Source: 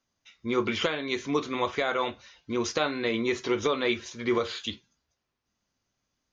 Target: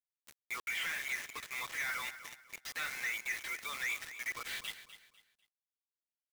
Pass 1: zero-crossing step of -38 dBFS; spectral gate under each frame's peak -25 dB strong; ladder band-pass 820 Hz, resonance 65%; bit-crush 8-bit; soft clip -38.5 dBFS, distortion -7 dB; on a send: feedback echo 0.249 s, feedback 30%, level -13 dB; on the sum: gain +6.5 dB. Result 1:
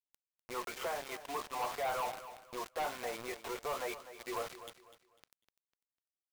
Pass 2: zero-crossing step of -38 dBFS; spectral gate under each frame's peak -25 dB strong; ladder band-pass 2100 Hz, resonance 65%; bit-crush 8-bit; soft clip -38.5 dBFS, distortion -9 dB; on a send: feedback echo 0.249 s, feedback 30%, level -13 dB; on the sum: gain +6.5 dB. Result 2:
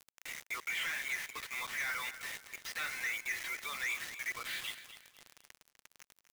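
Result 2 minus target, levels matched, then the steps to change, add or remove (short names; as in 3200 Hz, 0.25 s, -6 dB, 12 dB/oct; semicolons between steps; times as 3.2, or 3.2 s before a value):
zero-crossing step: distortion +8 dB
change: zero-crossing step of -47 dBFS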